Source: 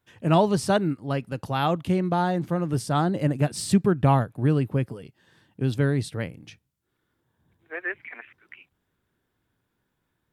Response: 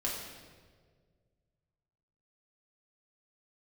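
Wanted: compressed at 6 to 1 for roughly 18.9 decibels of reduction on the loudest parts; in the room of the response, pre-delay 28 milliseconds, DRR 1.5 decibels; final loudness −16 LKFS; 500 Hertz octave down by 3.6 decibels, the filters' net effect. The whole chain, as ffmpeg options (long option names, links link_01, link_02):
-filter_complex "[0:a]equalizer=frequency=500:width_type=o:gain=-5,acompressor=threshold=-37dB:ratio=6,asplit=2[link_01][link_02];[1:a]atrim=start_sample=2205,adelay=28[link_03];[link_02][link_03]afir=irnorm=-1:irlink=0,volume=-6dB[link_04];[link_01][link_04]amix=inputs=2:normalize=0,volume=22.5dB"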